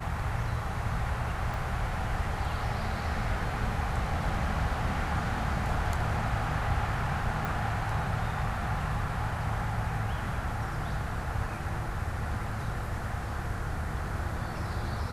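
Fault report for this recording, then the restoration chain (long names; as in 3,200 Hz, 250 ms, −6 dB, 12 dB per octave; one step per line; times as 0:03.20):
0:01.54: click
0:07.45: click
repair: click removal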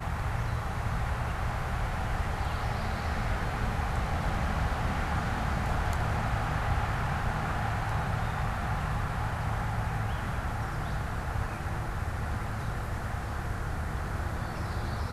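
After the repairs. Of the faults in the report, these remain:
0:01.54: click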